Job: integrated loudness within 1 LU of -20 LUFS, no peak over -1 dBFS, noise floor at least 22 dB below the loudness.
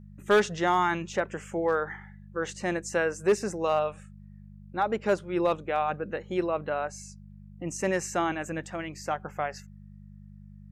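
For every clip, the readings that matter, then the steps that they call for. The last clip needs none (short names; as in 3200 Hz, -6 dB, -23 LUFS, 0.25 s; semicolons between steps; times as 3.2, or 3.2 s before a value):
clipped 0.3%; flat tops at -16.0 dBFS; hum 50 Hz; harmonics up to 200 Hz; hum level -46 dBFS; loudness -29.0 LUFS; peak -16.0 dBFS; loudness target -20.0 LUFS
-> clip repair -16 dBFS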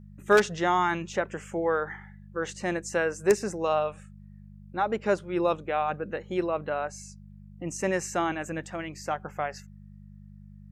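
clipped 0.0%; hum 50 Hz; harmonics up to 200 Hz; hum level -46 dBFS
-> de-hum 50 Hz, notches 4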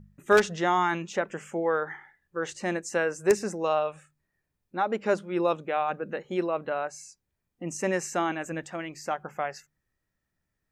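hum none; loudness -28.5 LUFS; peak -7.0 dBFS; loudness target -20.0 LUFS
-> gain +8.5 dB; limiter -1 dBFS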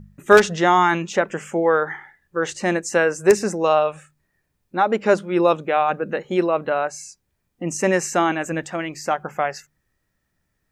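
loudness -20.5 LUFS; peak -1.0 dBFS; noise floor -74 dBFS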